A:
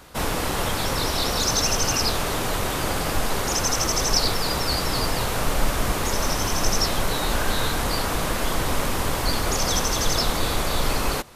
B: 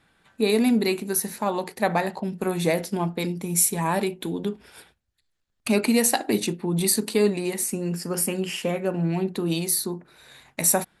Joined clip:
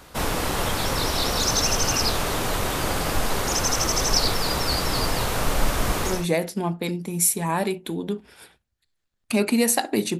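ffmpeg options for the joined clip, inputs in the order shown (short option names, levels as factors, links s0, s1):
-filter_complex "[0:a]apad=whole_dur=10.19,atrim=end=10.19,atrim=end=6.27,asetpts=PTS-STARTPTS[s0];[1:a]atrim=start=2.31:end=6.55,asetpts=PTS-STARTPTS[s1];[s0][s1]acrossfade=d=0.32:c1=qsin:c2=qsin"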